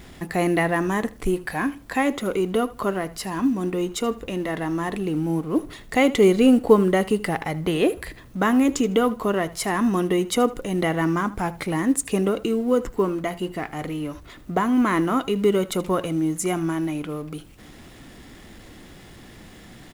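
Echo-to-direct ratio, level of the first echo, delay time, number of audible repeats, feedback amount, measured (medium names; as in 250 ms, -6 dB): -18.5 dB, -18.5 dB, 78 ms, 2, 20%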